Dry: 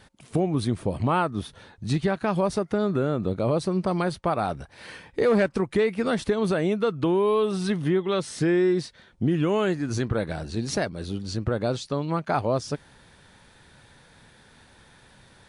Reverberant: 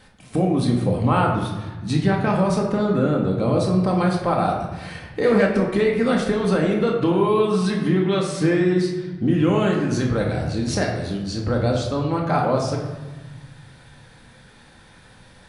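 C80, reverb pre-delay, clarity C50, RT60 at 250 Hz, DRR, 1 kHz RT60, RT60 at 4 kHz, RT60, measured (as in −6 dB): 6.5 dB, 4 ms, 4.0 dB, 1.9 s, −1.0 dB, 1.2 s, 0.80 s, 1.2 s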